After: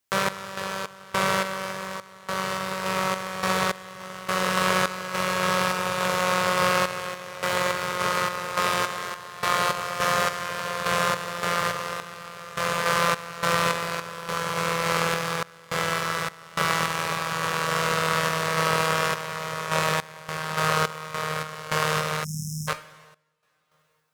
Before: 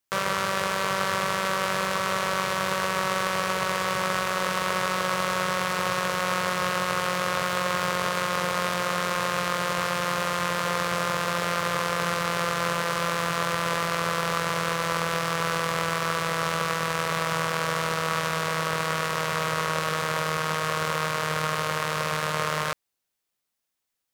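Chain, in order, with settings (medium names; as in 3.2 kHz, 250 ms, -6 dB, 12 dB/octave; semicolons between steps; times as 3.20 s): two-slope reverb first 0.32 s, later 2.7 s, from -19 dB, DRR 8.5 dB; random-step tremolo, depth 95%; spectral selection erased 22.24–22.68 s, 250–5100 Hz; trim +4 dB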